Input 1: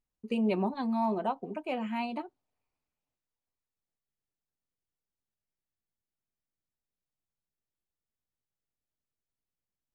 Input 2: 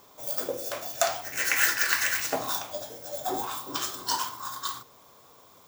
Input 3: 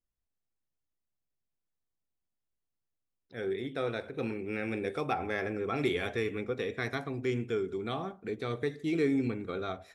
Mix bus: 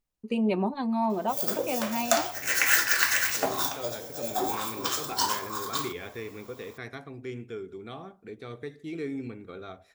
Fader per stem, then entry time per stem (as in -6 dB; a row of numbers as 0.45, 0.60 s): +2.5, +1.5, -6.0 dB; 0.00, 1.10, 0.00 s